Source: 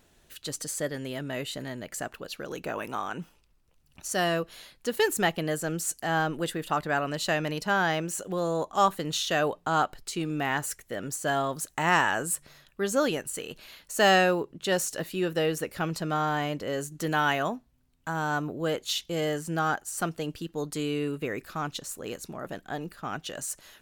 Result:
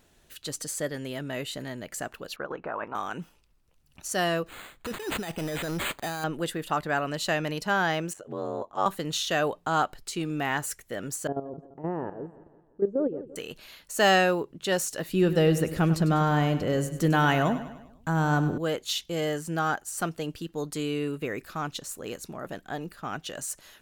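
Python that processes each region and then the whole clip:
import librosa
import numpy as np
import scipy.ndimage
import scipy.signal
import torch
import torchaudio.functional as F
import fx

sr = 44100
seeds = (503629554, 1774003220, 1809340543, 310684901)

y = fx.chain(x, sr, fx.lowpass(hz=1700.0, slope=12),
    fx.peak_eq(hz=1100.0, db=12.5, octaves=1.9),
    fx.level_steps(step_db=11), at=(2.36, 2.95))
y = fx.chain(y, sr, fx.over_compress(threshold_db=-31.0, ratio=-1.0),
    fx.resample_bad(factor=8, down='none', up='hold'),
    fx.clip_hard(threshold_db=-26.0), at=(4.46, 6.24))
y = fx.chain(y, sr, fx.lowpass(hz=1400.0, slope=6),
    fx.ring_mod(carrier_hz=47.0),
    fx.low_shelf(hz=180.0, db=-6.5), at=(8.13, 8.86))
y = fx.chain(y, sr, fx.level_steps(step_db=13),
    fx.lowpass_res(hz=440.0, q=2.3),
    fx.echo_feedback(ms=171, feedback_pct=48, wet_db=-16.0), at=(11.27, 13.36))
y = fx.chain(y, sr, fx.low_shelf(hz=320.0, db=12.0),
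    fx.echo_feedback(ms=100, feedback_pct=50, wet_db=-12.5), at=(15.09, 18.58))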